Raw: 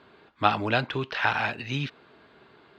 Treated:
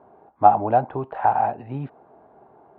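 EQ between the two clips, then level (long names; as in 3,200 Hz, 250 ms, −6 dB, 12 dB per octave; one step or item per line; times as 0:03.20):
low-pass with resonance 770 Hz, resonance Q 4.9
high-frequency loss of the air 60 metres
0.0 dB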